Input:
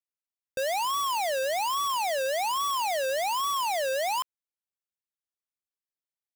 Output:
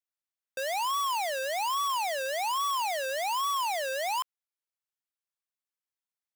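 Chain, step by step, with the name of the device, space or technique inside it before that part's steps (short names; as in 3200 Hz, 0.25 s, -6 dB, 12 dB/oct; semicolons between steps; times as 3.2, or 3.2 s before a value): filter by subtraction (in parallel: LPF 1100 Hz 12 dB/oct + phase invert); on the sum: gain -2.5 dB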